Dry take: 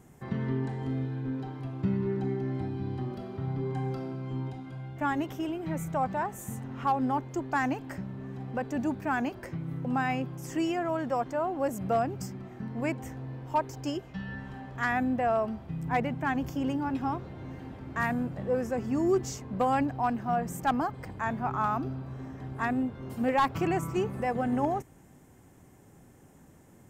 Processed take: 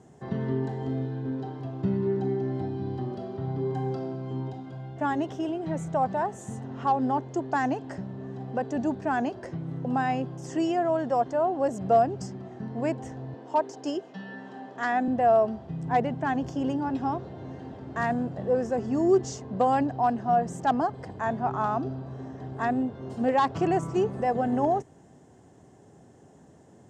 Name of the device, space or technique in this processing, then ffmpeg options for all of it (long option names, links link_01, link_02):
car door speaker: -filter_complex "[0:a]highpass=86,equalizer=frequency=420:width_type=q:width=4:gain=5,equalizer=frequency=680:width_type=q:width=4:gain=6,equalizer=frequency=1300:width_type=q:width=4:gain=-4,equalizer=frequency=2300:width_type=q:width=4:gain=-9,lowpass=frequency=7700:width=0.5412,lowpass=frequency=7700:width=1.3066,asettb=1/sr,asplit=3[link_01][link_02][link_03];[link_01]atrim=end=13.344[link_04];[link_02]atrim=start=13.34:end=15.08,asetpts=PTS-STARTPTS,afade=type=in:duration=0.004:curve=qsin,afade=type=out:start_time=1.736:duration=0.004:curve=qsin,highpass=frequency=200:width=0.5412,highpass=frequency=200:width=1.3066[link_05];[link_03]atrim=start=15.076[link_06];[link_04][link_05]acrossfade=duration=0.004:curve1=hsin:curve2=qsin[link_07];[link_07][link_06]acrossfade=duration=0.004:curve1=qsin:curve2=hsin,volume=1.5dB"